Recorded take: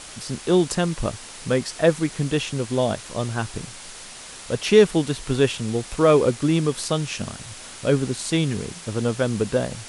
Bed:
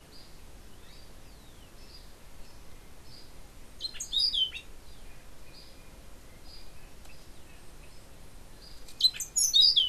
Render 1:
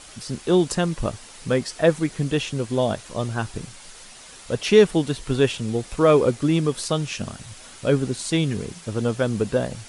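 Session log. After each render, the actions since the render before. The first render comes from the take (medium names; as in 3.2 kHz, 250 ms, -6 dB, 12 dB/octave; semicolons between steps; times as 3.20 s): noise reduction 6 dB, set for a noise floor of -40 dBFS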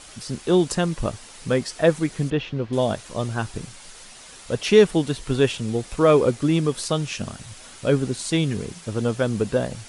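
2.30–2.73 s: distance through air 260 m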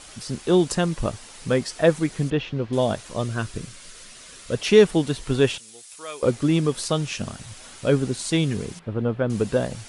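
3.23–4.57 s: peaking EQ 830 Hz -14.5 dB 0.25 oct; 5.58–6.23 s: differentiator; 8.79–9.30 s: distance through air 480 m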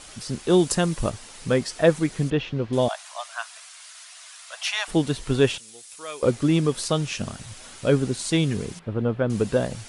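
0.50–1.10 s: treble shelf 8.9 kHz +9.5 dB; 2.88–4.88 s: steep high-pass 660 Hz 72 dB/octave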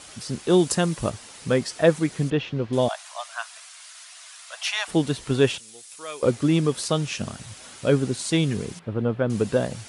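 high-pass 68 Hz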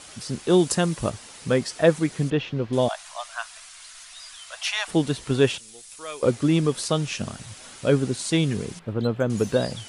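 add bed -19 dB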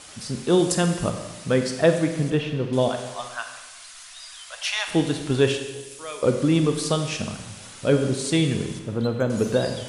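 Schroeder reverb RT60 1.2 s, combs from 31 ms, DRR 6 dB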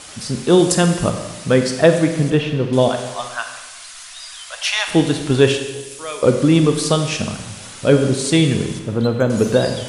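trim +6.5 dB; peak limiter -1 dBFS, peak gain reduction 1.5 dB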